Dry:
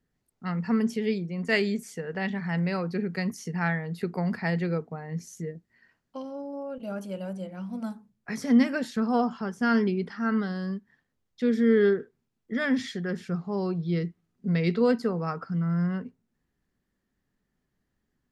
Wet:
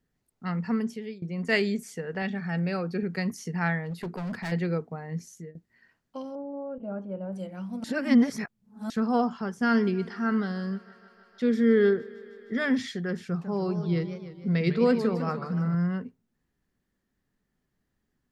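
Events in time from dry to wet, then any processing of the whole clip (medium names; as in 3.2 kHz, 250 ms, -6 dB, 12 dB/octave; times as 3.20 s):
0.56–1.22 s: fade out, to -19 dB
2.22–3.03 s: comb of notches 1 kHz
3.86–4.52 s: hard clipper -30 dBFS
5.14–5.55 s: fade out, to -12.5 dB
6.35–7.33 s: low-pass 1.1 kHz
7.84–8.90 s: reverse
9.47–12.76 s: thinning echo 155 ms, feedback 83%, high-pass 220 Hz, level -21 dB
13.26–15.75 s: modulated delay 151 ms, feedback 57%, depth 210 cents, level -10 dB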